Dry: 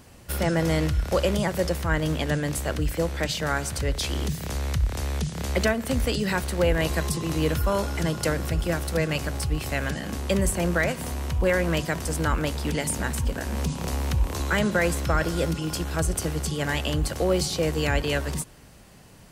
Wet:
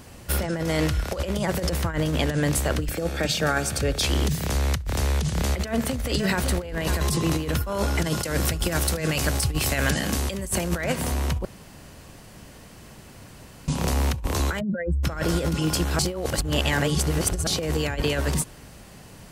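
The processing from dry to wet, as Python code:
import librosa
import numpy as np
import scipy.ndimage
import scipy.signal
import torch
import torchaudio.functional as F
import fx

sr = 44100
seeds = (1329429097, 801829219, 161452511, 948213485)

y = fx.low_shelf(x, sr, hz=240.0, db=-6.5, at=(0.67, 1.12), fade=0.02)
y = fx.notch_comb(y, sr, f0_hz=1000.0, at=(2.89, 4.03))
y = fx.echo_single(y, sr, ms=548, db=-13.0, at=(4.85, 7.01), fade=0.02)
y = fx.high_shelf(y, sr, hz=3100.0, db=7.5, at=(8.04, 10.78))
y = fx.spec_expand(y, sr, power=2.9, at=(14.59, 15.03), fade=0.02)
y = fx.edit(y, sr, fx.room_tone_fill(start_s=11.45, length_s=2.23),
    fx.reverse_span(start_s=15.99, length_s=1.48), tone=tone)
y = fx.over_compress(y, sr, threshold_db=-26.0, ratio=-0.5)
y = y * librosa.db_to_amplitude(3.0)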